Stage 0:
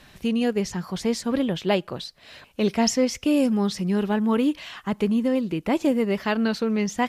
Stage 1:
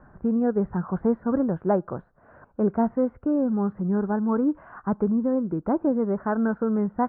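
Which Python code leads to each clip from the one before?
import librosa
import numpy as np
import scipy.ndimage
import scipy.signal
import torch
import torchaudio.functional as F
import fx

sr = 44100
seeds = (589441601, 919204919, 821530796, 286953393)

y = scipy.signal.sosfilt(scipy.signal.cheby1(5, 1.0, 1500.0, 'lowpass', fs=sr, output='sos'), x)
y = fx.rider(y, sr, range_db=4, speed_s=0.5)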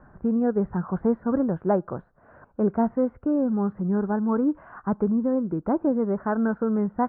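y = x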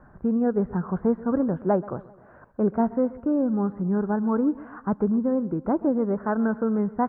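y = fx.echo_feedback(x, sr, ms=130, feedback_pct=52, wet_db=-19.5)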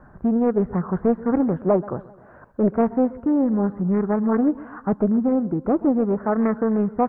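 y = fx.doppler_dist(x, sr, depth_ms=0.36)
y = y * librosa.db_to_amplitude(3.5)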